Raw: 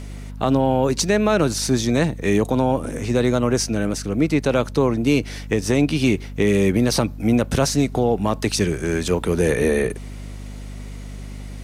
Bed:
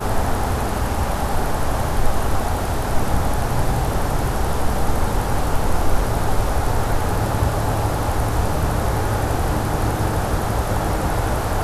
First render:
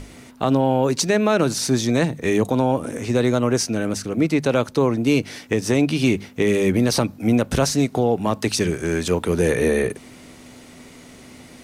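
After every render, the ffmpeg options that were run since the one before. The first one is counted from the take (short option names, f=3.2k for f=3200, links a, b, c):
-af "bandreject=f=50:t=h:w=6,bandreject=f=100:t=h:w=6,bandreject=f=150:t=h:w=6,bandreject=f=200:t=h:w=6"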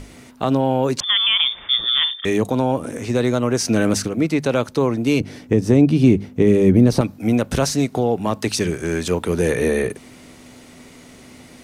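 -filter_complex "[0:a]asettb=1/sr,asplit=3[a][b][c];[a]atrim=end=1.004[d];[b]atrim=start=1:end=2.25,asetpts=PTS-STARTPTS,afade=t=in:d=0.004:c=qsin,afade=t=out:st=1.246:d=0.004:c=qsin,lowpass=f=3.1k:t=q:w=0.5098,lowpass=f=3.1k:t=q:w=0.6013,lowpass=f=3.1k:t=q:w=0.9,lowpass=f=3.1k:t=q:w=2.563,afreqshift=-3700[e];[c]atrim=start=2.246[f];[d][e]acrossfade=d=0.004:c1=hsin:c2=qsin[g];[g][f]acrossfade=d=0.004:c1=qsin:c2=hsin,asplit=3[h][i][j];[h]afade=t=out:st=3.64:d=0.02[k];[i]acontrast=59,afade=t=in:st=3.64:d=0.02,afade=t=out:st=4.07:d=0.02[l];[j]afade=t=in:st=4.07:d=0.02[m];[k][l][m]amix=inputs=3:normalize=0,asettb=1/sr,asplit=3[n][o][p];[n]atrim=end=5.204[q];[o]atrim=start=5.2:end=7.01,asetpts=PTS-STARTPTS,afade=t=in:d=0.004:c=qsin,afade=t=out:st=1.806:d=0.004:c=qsin,tiltshelf=f=680:g=8[r];[p]atrim=start=7.006[s];[q][r]acrossfade=d=0.004:c1=hsin:c2=qsin[t];[t][s]acrossfade=d=0.004:c1=qsin:c2=hsin"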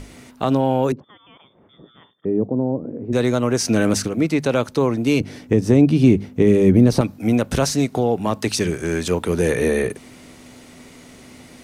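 -filter_complex "[0:a]asettb=1/sr,asplit=3[a][b][c];[a]atrim=end=0.924[d];[b]atrim=start=0.92:end=3.13,asetpts=PTS-STARTPTS,afade=t=in:d=0.004:c=qsin,afade=t=out:st=2.206:d=0.004:c=qsin,asuperpass=centerf=240:order=4:qfactor=0.63[e];[c]atrim=start=3.126[f];[d][e]acrossfade=d=0.004:c1=hsin:c2=qsin[g];[g][f]acrossfade=d=0.004:c1=qsin:c2=hsin"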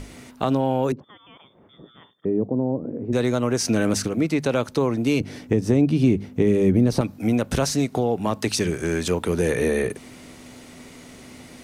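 -af "acompressor=threshold=-22dB:ratio=1.5"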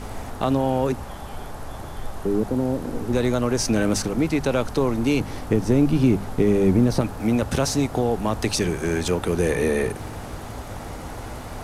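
-filter_complex "[1:a]volume=-14dB[a];[0:a][a]amix=inputs=2:normalize=0"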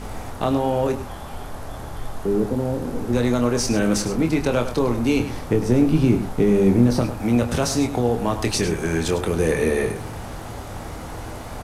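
-filter_complex "[0:a]asplit=2[a][b];[b]adelay=25,volume=-7dB[c];[a][c]amix=inputs=2:normalize=0,aecho=1:1:102:0.266"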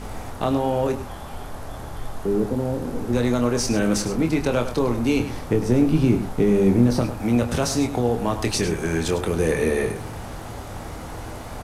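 -af "volume=-1dB"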